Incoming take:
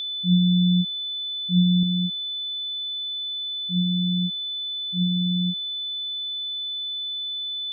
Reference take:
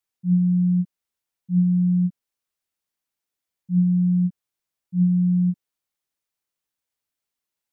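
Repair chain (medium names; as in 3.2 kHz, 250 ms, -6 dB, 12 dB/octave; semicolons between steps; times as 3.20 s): band-stop 3.5 kHz, Q 30; trim 0 dB, from 1.83 s +5 dB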